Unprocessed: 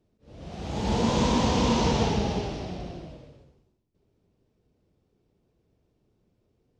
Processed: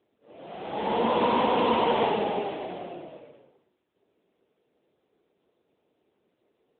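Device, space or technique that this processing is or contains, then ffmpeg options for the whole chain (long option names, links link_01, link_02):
telephone: -af "highpass=400,lowpass=3400,volume=6dB" -ar 8000 -c:a libopencore_amrnb -b:a 10200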